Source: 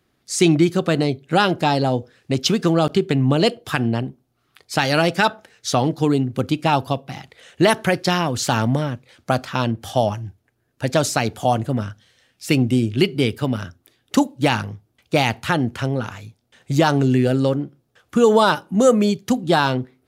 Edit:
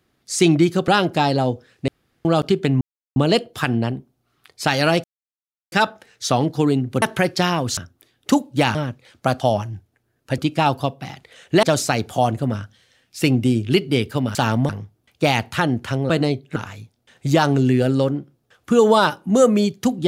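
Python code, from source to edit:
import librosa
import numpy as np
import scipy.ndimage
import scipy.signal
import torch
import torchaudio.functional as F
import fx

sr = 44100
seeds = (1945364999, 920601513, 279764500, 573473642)

y = fx.edit(x, sr, fx.move(start_s=0.88, length_s=0.46, to_s=16.01),
    fx.room_tone_fill(start_s=2.34, length_s=0.37),
    fx.insert_silence(at_s=3.27, length_s=0.35),
    fx.insert_silence(at_s=5.15, length_s=0.68),
    fx.move(start_s=6.45, length_s=1.25, to_s=10.9),
    fx.swap(start_s=8.45, length_s=0.34, other_s=13.62, other_length_s=0.98),
    fx.cut(start_s=9.44, length_s=0.48), tone=tone)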